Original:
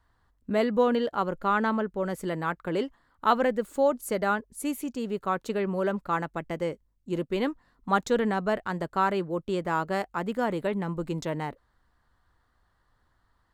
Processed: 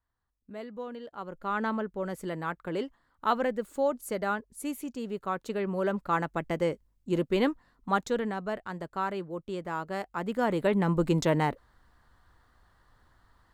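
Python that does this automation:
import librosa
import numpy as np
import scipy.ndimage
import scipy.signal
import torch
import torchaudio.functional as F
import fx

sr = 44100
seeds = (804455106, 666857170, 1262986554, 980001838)

y = fx.gain(x, sr, db=fx.line((1.0, -16.0), (1.64, -4.0), (5.41, -4.0), (6.45, 2.0), (7.45, 2.0), (8.36, -6.5), (9.87, -6.5), (10.94, 6.0)))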